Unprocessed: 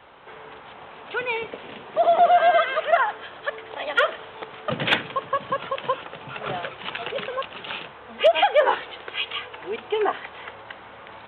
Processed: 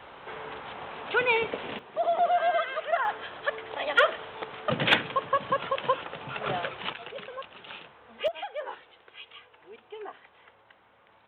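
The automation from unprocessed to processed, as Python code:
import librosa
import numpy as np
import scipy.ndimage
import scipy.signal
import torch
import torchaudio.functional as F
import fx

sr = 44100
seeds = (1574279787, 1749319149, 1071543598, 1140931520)

y = fx.gain(x, sr, db=fx.steps((0.0, 2.5), (1.79, -8.0), (3.05, -1.0), (6.93, -10.5), (8.28, -18.0)))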